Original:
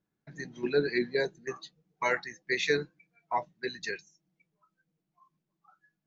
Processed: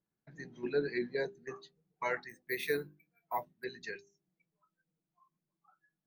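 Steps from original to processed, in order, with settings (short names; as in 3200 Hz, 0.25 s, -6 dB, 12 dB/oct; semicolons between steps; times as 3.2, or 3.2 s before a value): high shelf 3100 Hz -8 dB; notches 50/100/150/200/250/300/350/400 Hz; 2.29–3.64 careless resampling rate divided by 3×, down none, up hold; gain -5 dB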